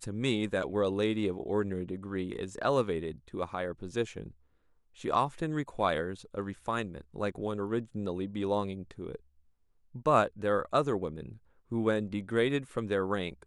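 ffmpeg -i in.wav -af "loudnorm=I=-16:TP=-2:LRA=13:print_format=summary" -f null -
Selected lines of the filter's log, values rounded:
Input Integrated:    -32.2 LUFS
Input True Peak:     -11.7 dBTP
Input LRA:             3.5 LU
Input Threshold:     -42.6 LUFS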